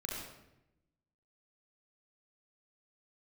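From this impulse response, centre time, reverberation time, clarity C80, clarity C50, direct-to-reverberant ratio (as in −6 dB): 73 ms, 0.90 s, 2.0 dB, −0.5 dB, −3.0 dB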